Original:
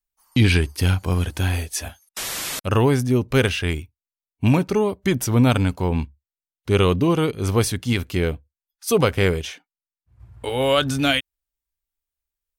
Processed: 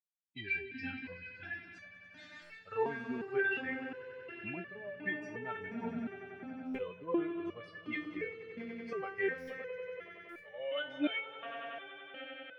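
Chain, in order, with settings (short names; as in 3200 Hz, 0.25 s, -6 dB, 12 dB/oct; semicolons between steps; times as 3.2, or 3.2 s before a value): per-bin expansion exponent 2; tilt +2.5 dB/oct; compressor, threshold -26 dBFS, peak gain reduction 10 dB; speaker cabinet 110–2500 Hz, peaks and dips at 180 Hz +7 dB, 650 Hz +9 dB, 1000 Hz -8 dB, 1700 Hz +7 dB; swelling echo 94 ms, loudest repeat 5, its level -15 dB; stuck buffer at 2.41/6.64/9.37/10.28, samples 512, times 8; stepped resonator 2.8 Hz 230–580 Hz; gain +9.5 dB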